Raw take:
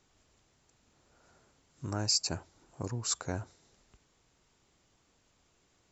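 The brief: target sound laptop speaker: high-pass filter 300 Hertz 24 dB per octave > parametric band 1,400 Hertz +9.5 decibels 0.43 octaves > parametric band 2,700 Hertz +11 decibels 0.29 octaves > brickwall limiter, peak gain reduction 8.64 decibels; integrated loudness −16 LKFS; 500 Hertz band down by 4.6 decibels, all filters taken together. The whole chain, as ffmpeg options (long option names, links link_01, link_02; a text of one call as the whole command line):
ffmpeg -i in.wav -af "highpass=frequency=300:width=0.5412,highpass=frequency=300:width=1.3066,equalizer=frequency=500:width_type=o:gain=-6,equalizer=frequency=1400:width_type=o:width=0.43:gain=9.5,equalizer=frequency=2700:width_type=o:width=0.29:gain=11,volume=22.5dB,alimiter=limit=-2.5dB:level=0:latency=1" out.wav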